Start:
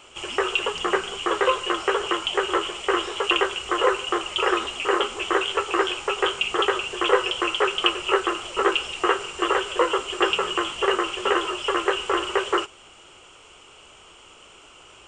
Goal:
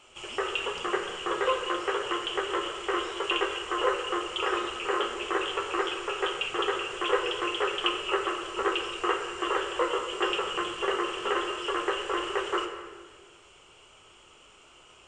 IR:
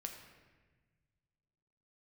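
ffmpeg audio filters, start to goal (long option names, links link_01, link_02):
-filter_complex "[1:a]atrim=start_sample=2205,asetrate=40572,aresample=44100[link_01];[0:a][link_01]afir=irnorm=-1:irlink=0,volume=-4dB"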